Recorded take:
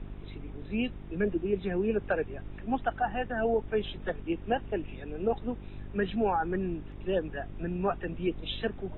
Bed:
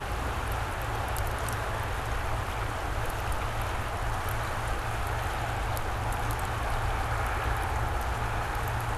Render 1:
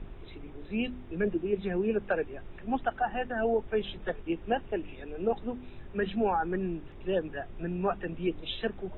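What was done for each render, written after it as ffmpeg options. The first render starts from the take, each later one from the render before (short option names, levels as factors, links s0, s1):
-af "bandreject=f=50:t=h:w=4,bandreject=f=100:t=h:w=4,bandreject=f=150:t=h:w=4,bandreject=f=200:t=h:w=4,bandreject=f=250:t=h:w=4,bandreject=f=300:t=h:w=4"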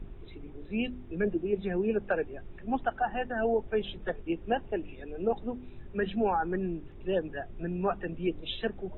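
-af "afftdn=nr=6:nf=-47"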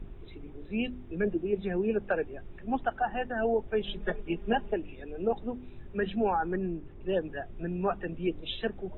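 -filter_complex "[0:a]asettb=1/sr,asplit=3[s0][s1][s2];[s0]atrim=end=3.874[s3];[s1]atrim=start=3.87:end=4.74,asetpts=PTS-STARTPTS,afade=t=in:d=0.004:c=qsin,afade=t=out:st=0.866:d=0.004:c=qsin,aecho=1:1:4.9:0.99,atrim=end_sample=38367[s4];[s2]atrim=start=4.736[s5];[s3][s4]acrossfade=d=0.004:c1=hsin:c2=qsin[s6];[s6][s5]acrossfade=d=0.004:c1=qsin:c2=hsin,asettb=1/sr,asplit=3[s7][s8][s9];[s7]atrim=end=6.564[s10];[s8]atrim=start=6.56:end=7.1,asetpts=PTS-STARTPTS,afade=t=in:d=0.004:c=qsin,afade=t=out:st=0.536:d=0.004:c=qsin,adynamicsmooth=sensitivity=3:basefreq=3400[s11];[s9]atrim=start=7.096[s12];[s10][s11]acrossfade=d=0.004:c1=hsin:c2=qsin[s13];[s13][s12]acrossfade=d=0.004:c1=qsin:c2=hsin"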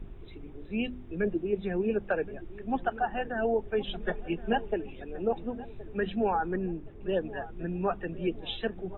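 -filter_complex "[0:a]asplit=2[s0][s1];[s1]adelay=1071,lowpass=f=1100:p=1,volume=0.158,asplit=2[s2][s3];[s3]adelay=1071,lowpass=f=1100:p=1,volume=0.5,asplit=2[s4][s5];[s5]adelay=1071,lowpass=f=1100:p=1,volume=0.5,asplit=2[s6][s7];[s7]adelay=1071,lowpass=f=1100:p=1,volume=0.5[s8];[s0][s2][s4][s6][s8]amix=inputs=5:normalize=0"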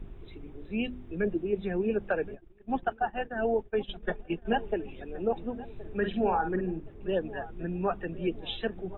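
-filter_complex "[0:a]asplit=3[s0][s1][s2];[s0]afade=t=out:st=2.34:d=0.02[s3];[s1]agate=range=0.0224:threshold=0.0282:ratio=3:release=100:detection=peak,afade=t=in:st=2.34:d=0.02,afade=t=out:st=4.45:d=0.02[s4];[s2]afade=t=in:st=4.45:d=0.02[s5];[s3][s4][s5]amix=inputs=3:normalize=0,asettb=1/sr,asplit=3[s6][s7][s8];[s6]atrim=end=5.724[s9];[s7]atrim=start=5.72:end=6.8,asetpts=PTS-STARTPTS,afade=t=in:d=0.004:c=qsin,afade=t=out:st=1.076:d=0.004:c=qsin,asplit=2[s10][s11];[s11]adelay=49,volume=0.447[s12];[s10][s12]amix=inputs=2:normalize=0,atrim=end_sample=47628[s13];[s8]atrim=start=6.796[s14];[s9][s13]acrossfade=d=0.004:c1=hsin:c2=qsin[s15];[s15][s14]acrossfade=d=0.004:c1=qsin:c2=hsin"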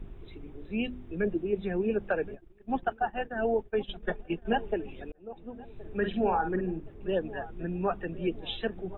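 -filter_complex "[0:a]asplit=2[s0][s1];[s0]atrim=end=5.12,asetpts=PTS-STARTPTS,afade=t=out:st=5.116:d=0.004:c=hsin[s2];[s1]atrim=start=5.12,asetpts=PTS-STARTPTS,afade=t=in:d=0.88[s3];[s2][s3]concat=n=2:v=0:a=1"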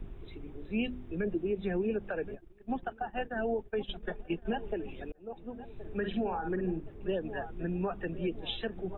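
-filter_complex "[0:a]alimiter=limit=0.0708:level=0:latency=1:release=108,acrossover=split=410|3000[s0][s1][s2];[s1]acompressor=threshold=0.0224:ratio=6[s3];[s0][s3][s2]amix=inputs=3:normalize=0"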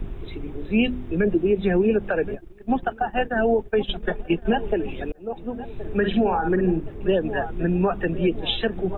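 -af "volume=3.98"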